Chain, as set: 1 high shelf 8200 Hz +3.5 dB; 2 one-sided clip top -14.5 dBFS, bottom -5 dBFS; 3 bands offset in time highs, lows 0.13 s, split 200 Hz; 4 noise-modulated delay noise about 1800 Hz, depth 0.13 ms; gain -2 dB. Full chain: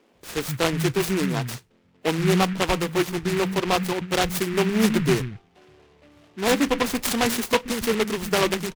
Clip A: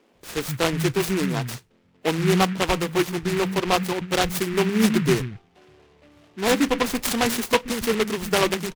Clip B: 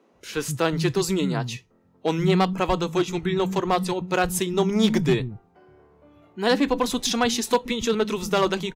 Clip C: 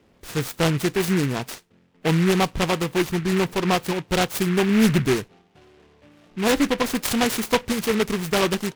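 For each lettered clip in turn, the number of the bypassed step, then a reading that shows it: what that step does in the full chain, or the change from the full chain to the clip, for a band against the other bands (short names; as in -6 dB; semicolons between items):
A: 2, distortion -17 dB; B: 4, 2 kHz band -3.0 dB; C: 3, crest factor change -2.5 dB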